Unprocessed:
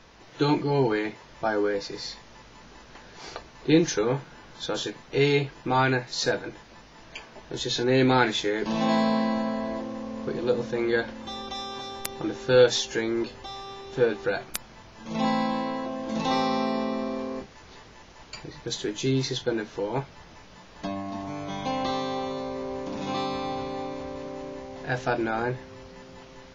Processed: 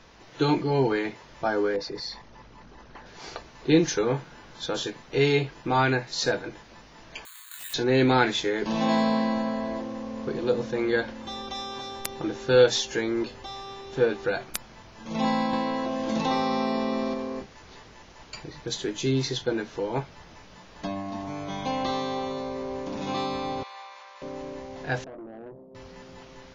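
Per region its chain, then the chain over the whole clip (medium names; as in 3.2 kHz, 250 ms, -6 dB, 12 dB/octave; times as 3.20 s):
1.76–3.06 s: resonances exaggerated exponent 1.5 + dynamic bell 1.1 kHz, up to +5 dB, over -50 dBFS, Q 0.75
7.25–7.74 s: elliptic high-pass 1.1 kHz + hard clipper -30 dBFS + careless resampling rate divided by 8×, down filtered, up zero stuff
15.53–17.14 s: treble shelf 9.1 kHz -5 dB + three bands compressed up and down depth 70%
23.63–24.22 s: high-pass 940 Hz 24 dB/octave + distance through air 53 m
25.04–25.75 s: elliptic band-pass 160–650 Hz + compression 5:1, threshold -34 dBFS + valve stage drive 37 dB, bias 0.5
whole clip: none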